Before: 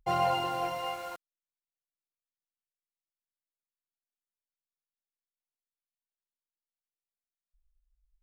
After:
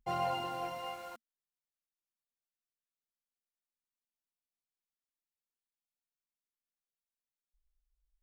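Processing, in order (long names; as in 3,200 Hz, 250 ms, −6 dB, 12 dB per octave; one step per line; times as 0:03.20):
parametric band 230 Hz +9 dB 0.3 octaves
level −6.5 dB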